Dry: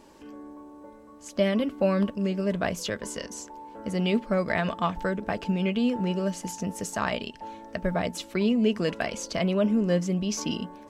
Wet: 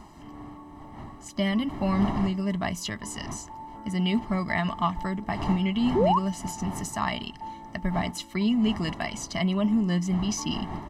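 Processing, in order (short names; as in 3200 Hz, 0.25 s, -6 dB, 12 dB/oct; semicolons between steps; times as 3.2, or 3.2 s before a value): wind noise 580 Hz -39 dBFS; comb 1 ms, depth 86%; painted sound rise, 5.95–6.19, 340–1200 Hz -19 dBFS; gain -2.5 dB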